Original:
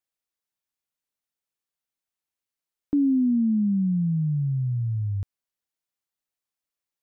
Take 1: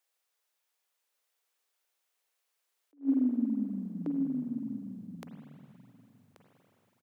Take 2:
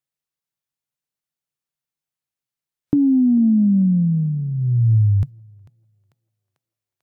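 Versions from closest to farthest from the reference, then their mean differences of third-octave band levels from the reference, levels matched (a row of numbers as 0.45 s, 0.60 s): 2, 1; 2.0 dB, 10.0 dB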